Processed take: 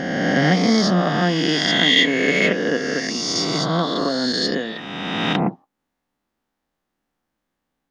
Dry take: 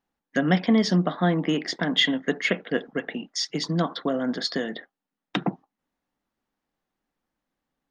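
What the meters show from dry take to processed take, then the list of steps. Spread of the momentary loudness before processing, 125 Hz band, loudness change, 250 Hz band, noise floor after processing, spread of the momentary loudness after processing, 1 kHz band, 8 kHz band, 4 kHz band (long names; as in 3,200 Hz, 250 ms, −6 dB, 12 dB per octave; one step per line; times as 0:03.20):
11 LU, +4.5 dB, +6.5 dB, +4.5 dB, −79 dBFS, 9 LU, +7.5 dB, +9.0 dB, +8.5 dB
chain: peak hold with a rise ahead of every peak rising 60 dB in 2.08 s
level +1 dB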